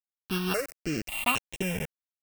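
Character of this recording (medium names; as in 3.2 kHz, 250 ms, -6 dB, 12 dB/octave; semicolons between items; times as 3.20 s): a buzz of ramps at a fixed pitch in blocks of 16 samples; random-step tremolo 3.8 Hz; a quantiser's noise floor 6-bit, dither none; notches that jump at a steady rate 3.7 Hz 690–4700 Hz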